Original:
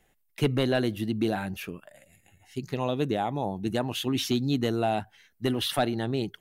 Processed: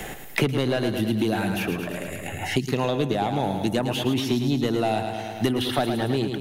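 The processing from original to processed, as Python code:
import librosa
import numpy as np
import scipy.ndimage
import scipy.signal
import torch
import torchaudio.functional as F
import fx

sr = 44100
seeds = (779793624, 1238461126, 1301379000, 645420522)

p1 = 10.0 ** (-18.0 / 20.0) * np.tanh(x / 10.0 ** (-18.0 / 20.0))
p2 = p1 + fx.echo_feedback(p1, sr, ms=108, feedback_pct=52, wet_db=-8, dry=0)
p3 = fx.band_squash(p2, sr, depth_pct=100)
y = F.gain(torch.from_numpy(p3), 3.5).numpy()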